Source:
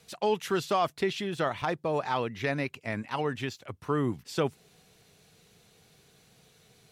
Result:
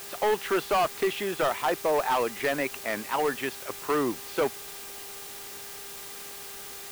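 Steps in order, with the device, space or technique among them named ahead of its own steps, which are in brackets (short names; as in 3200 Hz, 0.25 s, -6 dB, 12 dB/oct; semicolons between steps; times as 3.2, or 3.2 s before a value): aircraft radio (BPF 370–2400 Hz; hard clip -27 dBFS, distortion -10 dB; buzz 400 Hz, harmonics 28, -57 dBFS -4 dB/oct; white noise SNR 12 dB); gain +7 dB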